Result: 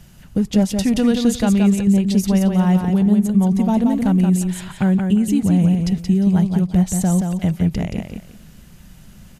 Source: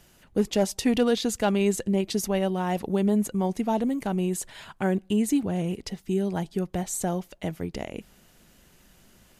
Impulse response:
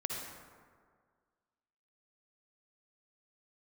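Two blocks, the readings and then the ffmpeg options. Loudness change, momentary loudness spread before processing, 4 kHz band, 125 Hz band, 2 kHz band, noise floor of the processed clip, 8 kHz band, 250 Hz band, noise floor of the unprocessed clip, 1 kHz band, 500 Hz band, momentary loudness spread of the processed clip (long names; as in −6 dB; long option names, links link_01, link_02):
+9.5 dB, 10 LU, +3.5 dB, +14.0 dB, +3.0 dB, −44 dBFS, +4.0 dB, +11.0 dB, −58 dBFS, +2.5 dB, +0.5 dB, 6 LU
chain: -filter_complex "[0:a]lowshelf=frequency=250:width_type=q:width=1.5:gain=9,alimiter=limit=-16dB:level=0:latency=1:release=321,asplit=2[link_01][link_02];[link_02]aecho=0:1:176|352|528:0.562|0.129|0.0297[link_03];[link_01][link_03]amix=inputs=2:normalize=0,volume=5.5dB"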